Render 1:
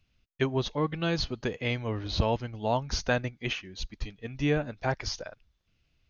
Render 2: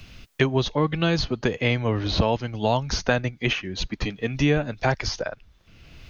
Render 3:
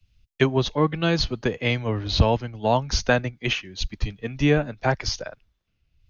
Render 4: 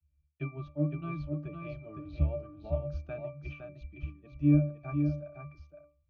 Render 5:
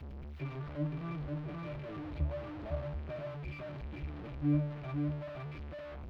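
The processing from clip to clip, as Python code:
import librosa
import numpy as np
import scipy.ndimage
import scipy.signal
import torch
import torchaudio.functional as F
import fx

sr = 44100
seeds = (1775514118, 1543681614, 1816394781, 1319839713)

y1 = fx.band_squash(x, sr, depth_pct=70)
y1 = F.gain(torch.from_numpy(y1), 6.0).numpy()
y2 = fx.band_widen(y1, sr, depth_pct=100)
y3 = fx.octave_resonator(y2, sr, note='D', decay_s=0.32)
y3 = y3 + 10.0 ** (-6.0 / 20.0) * np.pad(y3, (int(511 * sr / 1000.0), 0))[:len(y3)]
y4 = y3 + 0.5 * 10.0 ** (-30.5 / 20.0) * np.sign(y3)
y4 = fx.air_absorb(y4, sr, metres=340.0)
y4 = F.gain(torch.from_numpy(y4), -7.5).numpy()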